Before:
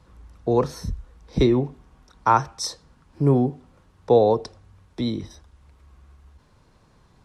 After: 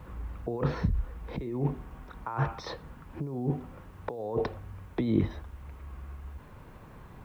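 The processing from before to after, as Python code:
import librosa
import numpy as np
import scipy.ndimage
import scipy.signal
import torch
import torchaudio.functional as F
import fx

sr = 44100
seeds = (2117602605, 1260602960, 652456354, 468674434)

y = fx.over_compress(x, sr, threshold_db=-30.0, ratio=-1.0)
y = scipy.signal.sosfilt(scipy.signal.butter(4, 2800.0, 'lowpass', fs=sr, output='sos'), y)
y = fx.quant_dither(y, sr, seeds[0], bits=12, dither='triangular')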